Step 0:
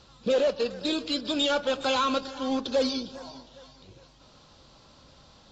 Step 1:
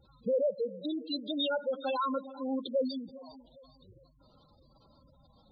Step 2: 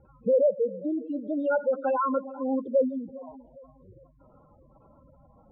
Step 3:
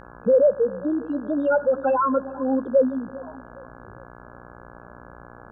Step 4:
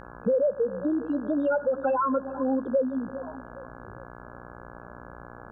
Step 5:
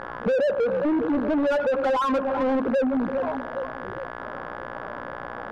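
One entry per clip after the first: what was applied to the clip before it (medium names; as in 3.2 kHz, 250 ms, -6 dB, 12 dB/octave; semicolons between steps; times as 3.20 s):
spectral gate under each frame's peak -10 dB strong; trim -4.5 dB
rippled Chebyshev low-pass 2.4 kHz, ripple 3 dB; trim +7.5 dB
mains buzz 60 Hz, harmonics 28, -50 dBFS -1 dB/octave; trim +5 dB
compression 3:1, threshold -23 dBFS, peak gain reduction 8 dB
overdrive pedal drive 26 dB, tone 1.1 kHz, clips at -15.5 dBFS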